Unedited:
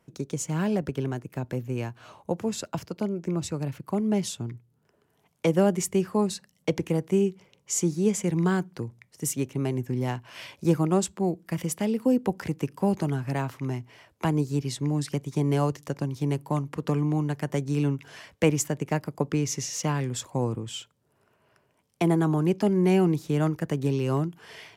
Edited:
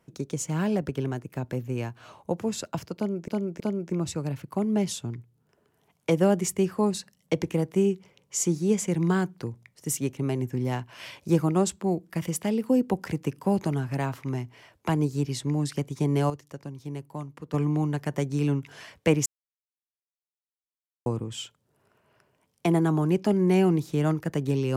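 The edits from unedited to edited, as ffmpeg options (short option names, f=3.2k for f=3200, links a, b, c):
-filter_complex "[0:a]asplit=7[a][b][c][d][e][f][g];[a]atrim=end=3.282[h];[b]atrim=start=2.958:end=3.282[i];[c]atrim=start=2.958:end=15.662[j];[d]atrim=start=15.658:end=16.902,asetpts=PTS-STARTPTS,volume=-9dB[k];[e]atrim=start=16.898:end=18.62,asetpts=PTS-STARTPTS,afade=t=out:st=1.718:d=0.004:c=hsin[l];[f]atrim=start=18.62:end=20.42,asetpts=PTS-STARTPTS,volume=0[m];[g]atrim=start=20.42,asetpts=PTS-STARTPTS,afade=t=in:d=0.004:c=hsin[n];[h][i]acrossfade=d=0.004:c1=hsin:c2=hsin[o];[o][j]acrossfade=d=0.004:c1=hsin:c2=hsin[p];[p][k]acrossfade=d=0.004:c1=hsin:c2=hsin[q];[l][m][n]concat=n=3:v=0:a=1[r];[q][r]acrossfade=d=0.004:c1=hsin:c2=hsin"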